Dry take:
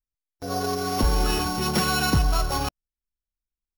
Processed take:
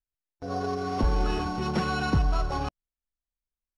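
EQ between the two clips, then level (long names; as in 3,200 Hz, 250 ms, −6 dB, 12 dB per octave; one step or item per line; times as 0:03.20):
Bessel low-pass filter 6,300 Hz, order 8
high-shelf EQ 2,800 Hz −10 dB
−2.5 dB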